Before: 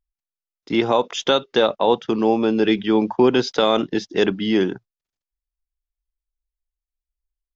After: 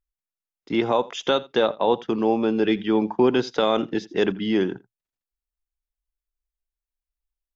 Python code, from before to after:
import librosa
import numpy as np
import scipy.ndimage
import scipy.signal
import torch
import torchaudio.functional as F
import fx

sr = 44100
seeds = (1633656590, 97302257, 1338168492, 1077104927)

y = fx.peak_eq(x, sr, hz=5300.0, db=-5.0, octaves=1.2)
y = y + 10.0 ** (-21.5 / 20.0) * np.pad(y, (int(84 * sr / 1000.0), 0))[:len(y)]
y = y * 10.0 ** (-3.0 / 20.0)